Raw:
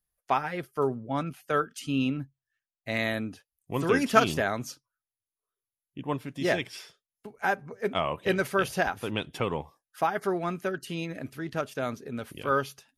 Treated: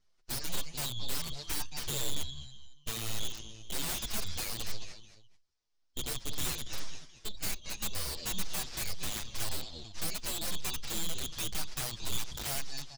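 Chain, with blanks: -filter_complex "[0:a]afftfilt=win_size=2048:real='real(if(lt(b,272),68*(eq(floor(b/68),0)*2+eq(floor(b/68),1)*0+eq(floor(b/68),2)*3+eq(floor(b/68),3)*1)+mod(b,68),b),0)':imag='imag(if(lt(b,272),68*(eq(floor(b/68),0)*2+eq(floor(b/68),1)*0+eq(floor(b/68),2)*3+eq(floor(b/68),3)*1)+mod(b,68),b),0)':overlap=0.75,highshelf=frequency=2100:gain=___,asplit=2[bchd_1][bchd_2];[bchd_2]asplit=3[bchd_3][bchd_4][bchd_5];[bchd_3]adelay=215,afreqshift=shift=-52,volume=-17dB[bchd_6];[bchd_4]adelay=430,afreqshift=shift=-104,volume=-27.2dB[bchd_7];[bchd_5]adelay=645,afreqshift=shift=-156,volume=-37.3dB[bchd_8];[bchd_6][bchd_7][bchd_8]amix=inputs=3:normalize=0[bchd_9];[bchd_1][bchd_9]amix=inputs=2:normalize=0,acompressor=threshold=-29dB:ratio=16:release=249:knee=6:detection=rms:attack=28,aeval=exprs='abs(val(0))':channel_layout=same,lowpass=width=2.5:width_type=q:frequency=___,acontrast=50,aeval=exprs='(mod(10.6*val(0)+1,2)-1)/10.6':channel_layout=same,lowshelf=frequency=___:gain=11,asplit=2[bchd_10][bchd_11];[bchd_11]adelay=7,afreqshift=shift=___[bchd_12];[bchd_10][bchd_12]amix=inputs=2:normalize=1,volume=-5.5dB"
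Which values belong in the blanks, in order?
11, 5300, 120, -1.9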